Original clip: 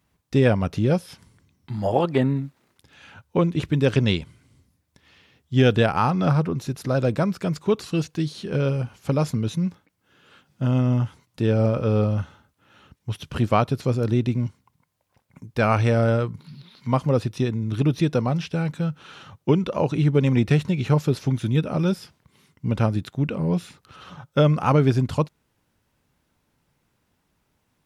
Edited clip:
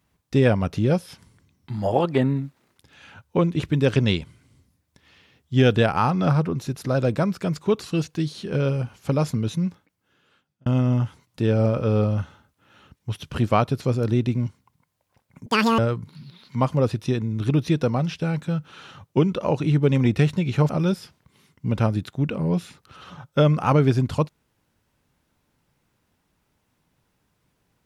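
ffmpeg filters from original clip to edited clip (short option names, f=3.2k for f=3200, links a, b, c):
-filter_complex "[0:a]asplit=5[a][b][c][d][e];[a]atrim=end=10.66,asetpts=PTS-STARTPTS,afade=t=out:st=9.62:d=1.04[f];[b]atrim=start=10.66:end=15.464,asetpts=PTS-STARTPTS,afade=t=in:d=0.004:c=hsin[g];[c]atrim=start=15.46:end=16.1,asetpts=PTS-STARTPTS,asetrate=87318,aresample=44100[h];[d]atrim=start=16.096:end=21.012[i];[e]atrim=start=21.688[j];[f][g]concat=n=2:v=0:a=1[k];[k][h]acrossfade=d=0.004:c1=hsin:c2=hsin[l];[l][i]acrossfade=d=0.004:c1=hsin:c2=hsin[m];[m][j]acrossfade=d=0.004:c1=hsin:c2=hsin"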